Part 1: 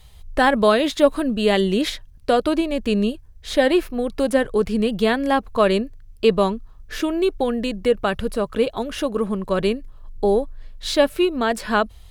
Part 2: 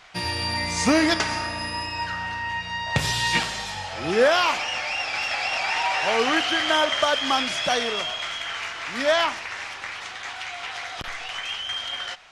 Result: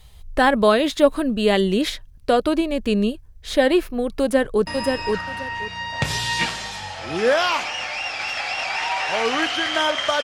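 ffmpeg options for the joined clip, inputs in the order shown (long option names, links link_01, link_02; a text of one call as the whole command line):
ffmpeg -i cue0.wav -i cue1.wav -filter_complex "[0:a]apad=whole_dur=10.23,atrim=end=10.23,atrim=end=4.672[link_01];[1:a]atrim=start=1.608:end=7.17[link_02];[link_01][link_02]acrossfade=duration=0.004:curve1=hsin:curve2=hsin,asplit=2[link_03][link_04];[link_04]afade=type=in:start_time=4.21:duration=0.01,afade=type=out:start_time=4.67:duration=0.01,aecho=0:1:530|1060|1590:0.630957|0.126191|0.0252383[link_05];[link_03][link_05]amix=inputs=2:normalize=0" out.wav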